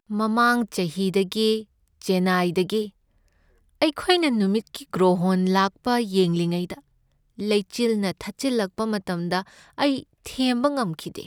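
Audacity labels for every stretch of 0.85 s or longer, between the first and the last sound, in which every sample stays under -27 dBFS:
2.850000	3.820000	silence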